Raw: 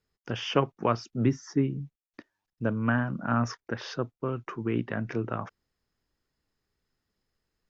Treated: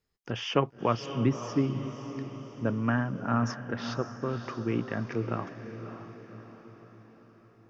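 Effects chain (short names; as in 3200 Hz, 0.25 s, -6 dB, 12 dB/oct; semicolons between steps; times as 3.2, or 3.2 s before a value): notch 1500 Hz, Q 20; on a send: diffused feedback echo 0.58 s, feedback 51%, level -10 dB; on the sum: gain -1 dB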